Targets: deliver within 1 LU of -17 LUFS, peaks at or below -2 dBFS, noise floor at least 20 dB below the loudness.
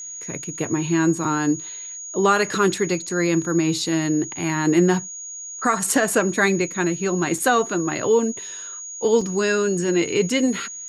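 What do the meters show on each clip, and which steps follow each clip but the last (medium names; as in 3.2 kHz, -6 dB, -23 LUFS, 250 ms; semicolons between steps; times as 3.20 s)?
dropouts 2; longest dropout 3.6 ms; steady tone 6.7 kHz; tone level -32 dBFS; loudness -21.0 LUFS; peak level -6.5 dBFS; loudness target -17.0 LUFS
-> interpolate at 7.38/9.21 s, 3.6 ms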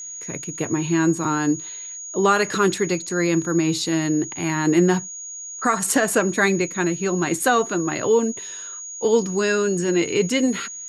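dropouts 0; steady tone 6.7 kHz; tone level -32 dBFS
-> band-stop 6.7 kHz, Q 30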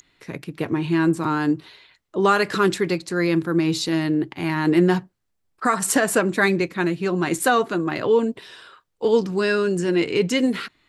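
steady tone not found; loudness -21.5 LUFS; peak level -7.0 dBFS; loudness target -17.0 LUFS
-> trim +4.5 dB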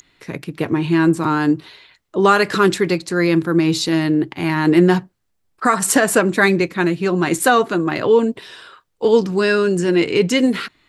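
loudness -17.0 LUFS; peak level -2.5 dBFS; noise floor -68 dBFS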